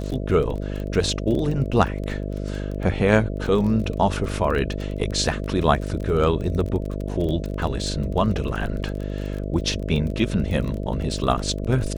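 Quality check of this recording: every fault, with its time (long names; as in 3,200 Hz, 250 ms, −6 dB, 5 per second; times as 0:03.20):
mains buzz 50 Hz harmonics 13 −28 dBFS
surface crackle 22 per second −28 dBFS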